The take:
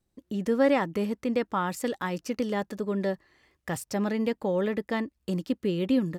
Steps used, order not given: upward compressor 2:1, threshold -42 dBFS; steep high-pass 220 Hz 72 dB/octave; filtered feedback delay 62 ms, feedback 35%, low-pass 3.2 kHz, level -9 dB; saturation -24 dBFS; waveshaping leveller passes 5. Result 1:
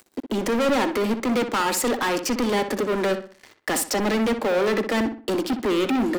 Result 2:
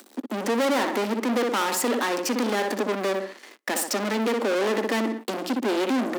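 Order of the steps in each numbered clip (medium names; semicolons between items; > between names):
saturation > steep high-pass > upward compressor > waveshaping leveller > filtered feedback delay; saturation > upward compressor > filtered feedback delay > waveshaping leveller > steep high-pass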